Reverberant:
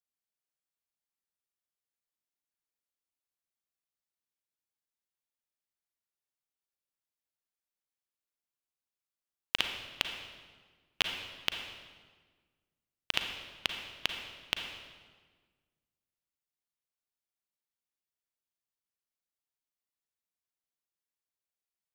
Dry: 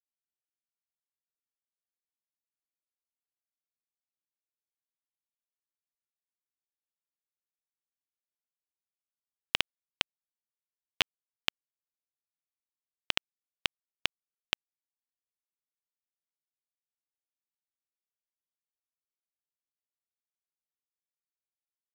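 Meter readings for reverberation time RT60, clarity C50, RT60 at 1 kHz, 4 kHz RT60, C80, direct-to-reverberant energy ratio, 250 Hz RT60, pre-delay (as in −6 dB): 1.5 s, 5.0 dB, 1.4 s, 1.2 s, 6.5 dB, 4.0 dB, 1.8 s, 35 ms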